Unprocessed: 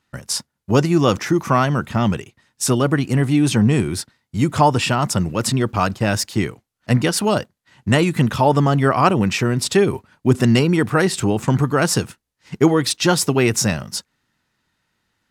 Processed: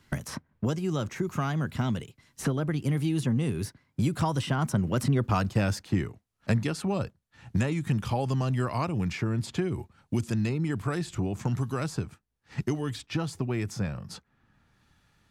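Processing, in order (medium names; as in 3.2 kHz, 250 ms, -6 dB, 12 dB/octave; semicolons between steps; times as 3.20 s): Doppler pass-by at 5.45 s, 28 m/s, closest 10 m; bass shelf 150 Hz +11.5 dB; three bands compressed up and down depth 100%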